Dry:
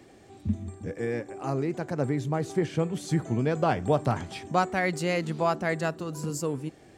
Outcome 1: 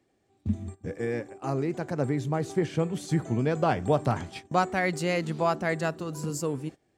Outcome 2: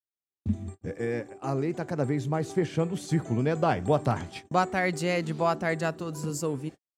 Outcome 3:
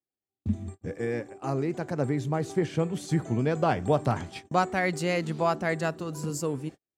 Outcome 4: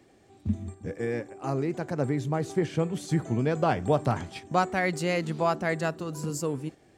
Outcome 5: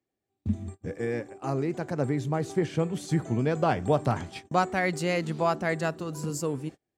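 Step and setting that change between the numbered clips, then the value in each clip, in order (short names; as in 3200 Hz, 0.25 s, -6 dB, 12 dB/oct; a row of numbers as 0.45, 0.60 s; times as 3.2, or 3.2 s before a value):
gate, range: -18, -60, -46, -6, -33 dB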